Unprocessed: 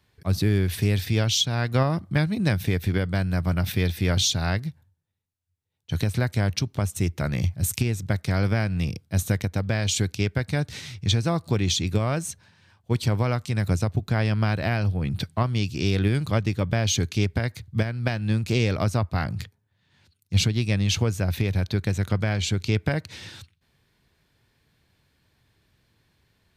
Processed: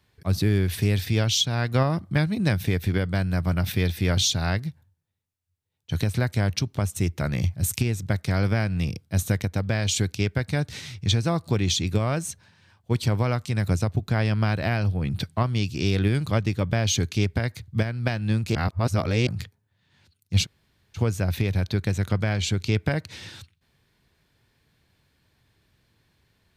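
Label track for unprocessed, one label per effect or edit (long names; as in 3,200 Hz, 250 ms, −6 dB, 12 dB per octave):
18.550000	19.270000	reverse
20.440000	20.970000	fill with room tone, crossfade 0.06 s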